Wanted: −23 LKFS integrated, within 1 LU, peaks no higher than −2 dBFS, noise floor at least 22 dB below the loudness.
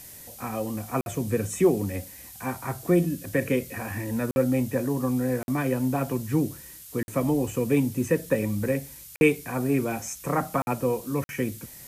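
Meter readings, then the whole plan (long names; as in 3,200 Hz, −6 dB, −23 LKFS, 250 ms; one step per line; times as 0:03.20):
number of dropouts 7; longest dropout 51 ms; background noise floor −45 dBFS; target noise floor −49 dBFS; integrated loudness −27.0 LKFS; sample peak −8.0 dBFS; target loudness −23.0 LKFS
→ repair the gap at 0:01.01/0:04.31/0:05.43/0:07.03/0:09.16/0:10.62/0:11.24, 51 ms
noise reduction from a noise print 6 dB
level +4 dB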